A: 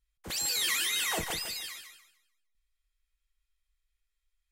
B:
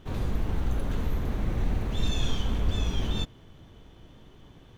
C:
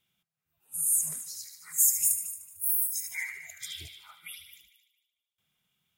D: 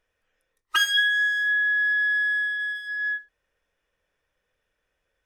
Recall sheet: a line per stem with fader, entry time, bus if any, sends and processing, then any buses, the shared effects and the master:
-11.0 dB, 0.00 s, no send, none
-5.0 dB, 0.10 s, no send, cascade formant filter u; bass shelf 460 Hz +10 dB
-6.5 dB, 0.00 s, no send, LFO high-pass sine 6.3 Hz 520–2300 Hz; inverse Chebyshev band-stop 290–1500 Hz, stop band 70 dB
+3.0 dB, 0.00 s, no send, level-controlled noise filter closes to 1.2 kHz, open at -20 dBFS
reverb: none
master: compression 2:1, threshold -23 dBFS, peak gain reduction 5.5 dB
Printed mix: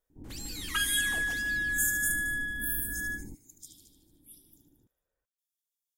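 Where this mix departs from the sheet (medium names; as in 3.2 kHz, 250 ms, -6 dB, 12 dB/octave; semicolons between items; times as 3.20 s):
stem B -5.0 dB -> -11.5 dB; stem D +3.0 dB -> -8.5 dB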